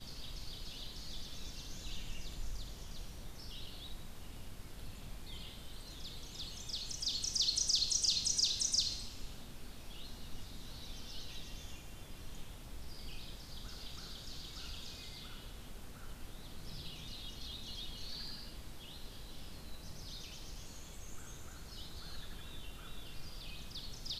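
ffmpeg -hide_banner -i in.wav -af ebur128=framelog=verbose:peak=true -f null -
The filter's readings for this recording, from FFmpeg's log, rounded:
Integrated loudness:
  I:         -40.3 LUFS
  Threshold: -51.0 LUFS
Loudness range:
  LRA:        16.9 LU
  Threshold: -60.6 LUFS
  LRA low:   -49.8 LUFS
  LRA high:  -32.9 LUFS
True peak:
  Peak:      -18.9 dBFS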